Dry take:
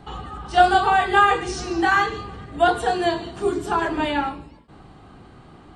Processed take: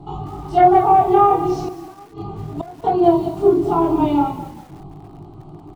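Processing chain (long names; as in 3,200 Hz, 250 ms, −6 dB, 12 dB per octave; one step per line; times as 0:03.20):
treble cut that deepens with the level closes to 1,800 Hz, closed at −14.5 dBFS
tilt shelving filter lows +9 dB, about 1,200 Hz
phaser with its sweep stopped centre 340 Hz, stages 8
soft clipping −2.5 dBFS, distortion −24 dB
chorus effect 0.37 Hz, delay 19.5 ms, depth 5.2 ms
0:01.56–0:02.84: gate with flip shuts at −19 dBFS, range −24 dB
on a send: echo with shifted repeats 194 ms, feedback 43%, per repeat −31 Hz, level −20.5 dB
on the sum: feedback echo at a low word length 195 ms, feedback 35%, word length 7 bits, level −14 dB
level +5.5 dB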